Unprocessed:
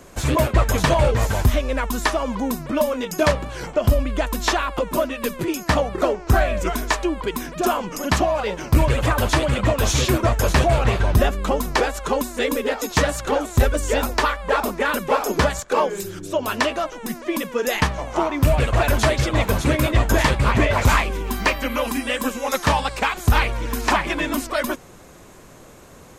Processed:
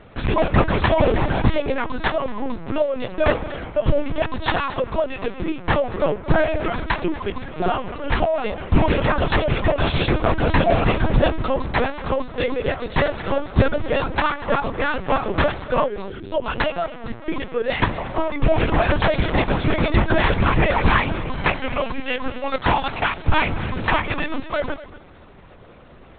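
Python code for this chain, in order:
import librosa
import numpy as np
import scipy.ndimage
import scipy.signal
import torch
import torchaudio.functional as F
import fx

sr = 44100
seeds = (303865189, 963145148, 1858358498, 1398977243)

y = x + 10.0 ** (-16.5 / 20.0) * np.pad(x, (int(233 * sr / 1000.0), 0))[:len(x)]
y = fx.lpc_vocoder(y, sr, seeds[0], excitation='pitch_kept', order=10)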